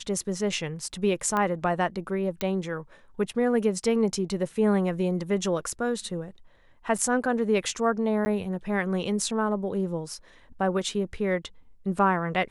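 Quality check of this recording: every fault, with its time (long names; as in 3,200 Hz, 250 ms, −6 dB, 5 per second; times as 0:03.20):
0:01.37: click −15 dBFS
0:02.41: click
0:06.98–0:06.99: drop-out 5.1 ms
0:08.25–0:08.26: drop-out 10 ms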